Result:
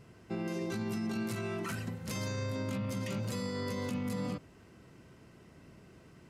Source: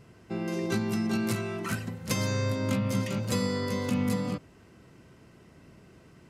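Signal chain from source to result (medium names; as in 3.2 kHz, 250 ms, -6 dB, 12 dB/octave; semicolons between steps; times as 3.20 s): peak limiter -26 dBFS, peak gain reduction 10.5 dB; trim -2 dB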